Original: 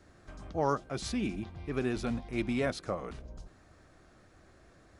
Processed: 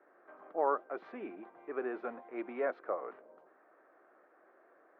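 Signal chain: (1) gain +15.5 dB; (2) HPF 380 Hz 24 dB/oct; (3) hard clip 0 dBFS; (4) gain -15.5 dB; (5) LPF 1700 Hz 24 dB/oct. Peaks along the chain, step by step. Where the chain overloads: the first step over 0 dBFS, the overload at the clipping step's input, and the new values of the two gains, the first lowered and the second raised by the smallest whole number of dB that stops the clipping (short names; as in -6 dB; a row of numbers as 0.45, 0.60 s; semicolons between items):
-0.5, -2.5, -2.5, -18.0, -18.5 dBFS; no overload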